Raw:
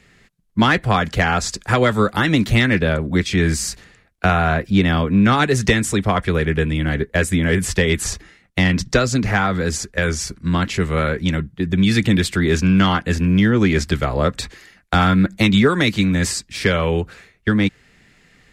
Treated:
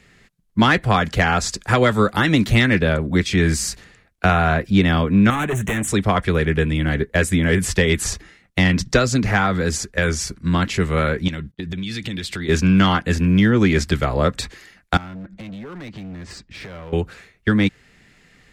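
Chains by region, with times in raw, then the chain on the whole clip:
0:05.30–0:05.88: hard clipping −19 dBFS + Butterworth band-reject 4,800 Hz, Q 1.3
0:11.28–0:12.49: noise gate −42 dBFS, range −26 dB + parametric band 3,800 Hz +7 dB 1.4 octaves + downward compressor 10 to 1, threshold −24 dBFS
0:14.97–0:16.93: head-to-tape spacing loss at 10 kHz 25 dB + downward compressor 16 to 1, threshold −28 dBFS + hard clipping −31 dBFS
whole clip: no processing

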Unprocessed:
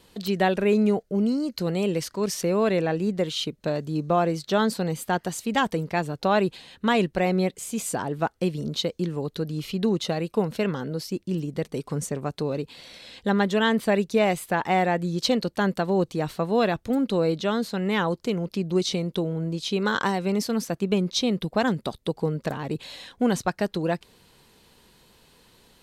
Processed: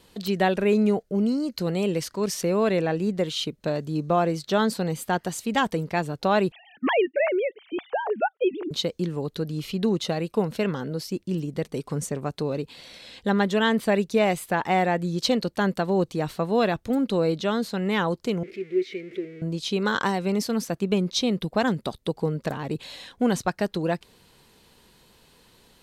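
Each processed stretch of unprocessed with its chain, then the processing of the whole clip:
0:06.52–0:08.71: three sine waves on the formant tracks + de-essing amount 90%
0:18.43–0:19.42: converter with a step at zero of −27 dBFS + pair of resonant band-passes 900 Hz, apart 2.5 octaves
whole clip: no processing

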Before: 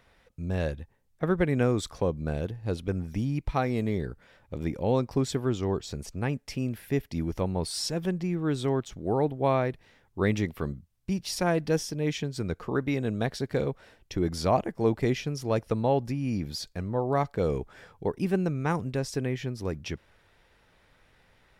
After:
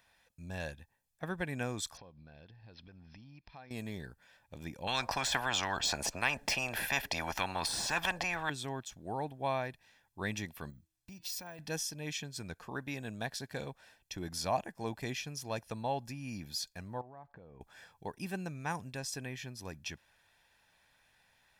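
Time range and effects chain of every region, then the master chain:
0:01.97–0:03.71: downward compressor, threshold −39 dBFS + bad sample-rate conversion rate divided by 4×, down none, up filtered
0:04.87–0:08.50: spectral tilt −4.5 dB per octave + every bin compressed towards the loudest bin 10 to 1
0:10.70–0:11.59: hum removal 322.3 Hz, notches 14 + downward compressor 5 to 1, threshold −35 dBFS + bad sample-rate conversion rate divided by 2×, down filtered, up hold
0:17.01–0:17.61: low-pass filter 1,300 Hz + downward compressor 10 to 1, threshold −37 dBFS
whole clip: de-essing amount 60%; spectral tilt +2.5 dB per octave; comb filter 1.2 ms, depth 47%; level −8 dB

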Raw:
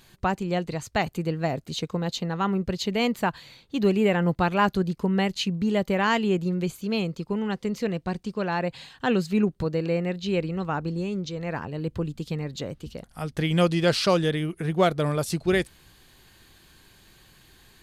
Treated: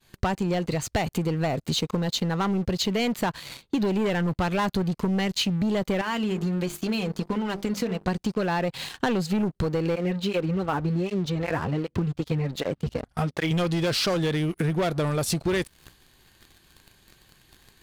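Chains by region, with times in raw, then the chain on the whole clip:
0:06.01–0:08.08: flanger 1.3 Hz, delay 3 ms, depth 1.6 ms, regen +32% + mains-hum notches 50/100/150/200/250/300/350/400/450 Hz + downward compressor 2 to 1, threshold −37 dBFS
0:09.95–0:13.51: low-pass filter 3,000 Hz 6 dB per octave + through-zero flanger with one copy inverted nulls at 1.3 Hz, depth 6 ms
whole clip: downward expander −52 dBFS; leveller curve on the samples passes 3; downward compressor 10 to 1, threshold −27 dBFS; level +4 dB

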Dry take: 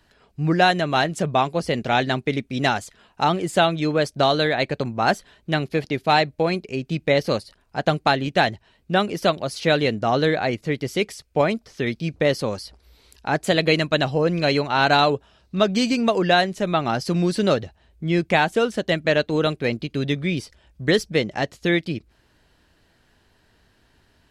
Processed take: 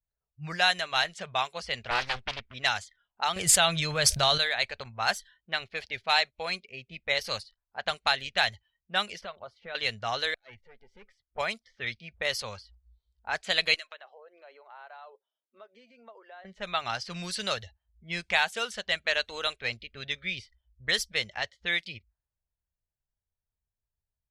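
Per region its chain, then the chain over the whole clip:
0:01.90–0:02.54: high-shelf EQ 5,400 Hz −7.5 dB + highs frequency-modulated by the lows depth 0.83 ms
0:03.36–0:04.38: low-shelf EQ 410 Hz +4.5 dB + envelope flattener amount 70%
0:09.21–0:09.75: high-shelf EQ 2,100 Hz −10 dB + downward compressor 5 to 1, threshold −22 dBFS
0:10.34–0:11.38: tube saturation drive 20 dB, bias 0.35 + downward compressor 2.5 to 1, threshold −33 dBFS + gate with flip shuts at −24 dBFS, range −36 dB
0:13.74–0:16.45: Butterworth high-pass 250 Hz 48 dB per octave + downward compressor 4 to 1, threshold −34 dBFS
whole clip: noise reduction from a noise print of the clip's start 20 dB; low-pass that shuts in the quiet parts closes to 530 Hz, open at −16.5 dBFS; guitar amp tone stack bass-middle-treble 10-0-10; level +1.5 dB

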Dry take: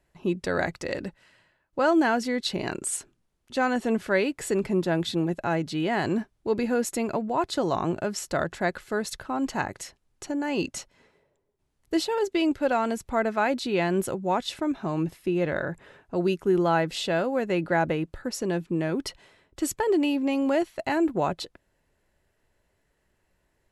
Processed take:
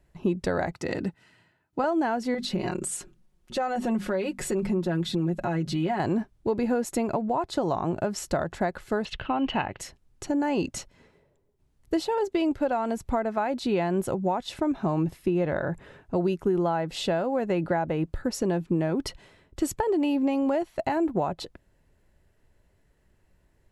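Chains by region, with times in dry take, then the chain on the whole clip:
0:00.72–0:01.84: high-pass filter 94 Hz + notch comb filter 560 Hz
0:02.34–0:06.00: mains-hum notches 50/100/150/200/250 Hz + comb filter 5.5 ms, depth 72% + downward compressor 2.5 to 1, threshold −30 dBFS
0:09.05–0:09.80: low-pass with resonance 2,900 Hz, resonance Q 7.9 + one half of a high-frequency compander encoder only
whole clip: dynamic equaliser 800 Hz, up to +8 dB, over −39 dBFS, Q 1.1; downward compressor 5 to 1, threshold −26 dBFS; low-shelf EQ 290 Hz +9.5 dB

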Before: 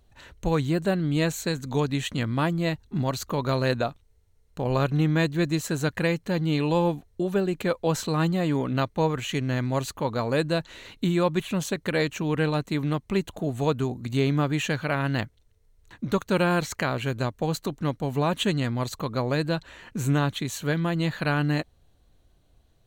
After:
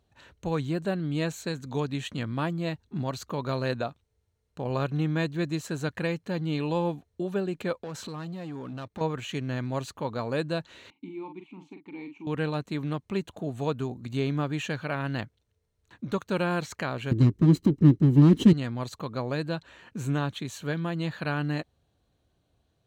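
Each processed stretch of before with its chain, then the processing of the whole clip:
0:07.78–0:09.01: leveller curve on the samples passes 2 + downward compressor, threshold −31 dBFS
0:10.90–0:12.27: formant filter u + double-tracking delay 43 ms −7 dB
0:17.11–0:18.53: lower of the sound and its delayed copy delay 1 ms + low shelf with overshoot 490 Hz +12 dB, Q 3
whole clip: high-pass filter 77 Hz; high-shelf EQ 9,400 Hz −9.5 dB; notch filter 2,000 Hz, Q 19; level −4.5 dB

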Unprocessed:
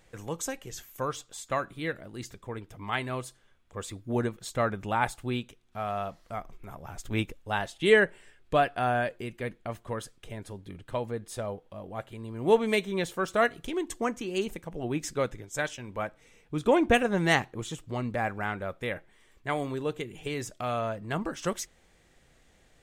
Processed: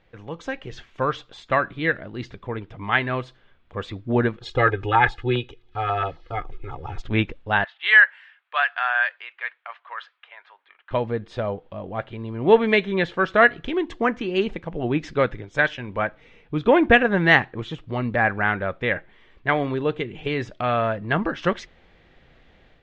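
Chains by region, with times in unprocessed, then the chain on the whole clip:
0:04.41–0:07.02: comb filter 2.4 ms, depth 98% + auto-filter notch saw down 7.4 Hz 560–2,400 Hz
0:07.64–0:10.91: de-essing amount 35% + high-pass filter 1,000 Hz 24 dB per octave + low-pass that shuts in the quiet parts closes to 1,800 Hz, open at −28 dBFS
whole clip: low-pass filter 3,800 Hz 24 dB per octave; dynamic equaliser 1,700 Hz, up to +7 dB, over −47 dBFS, Q 3.1; automatic gain control gain up to 8 dB

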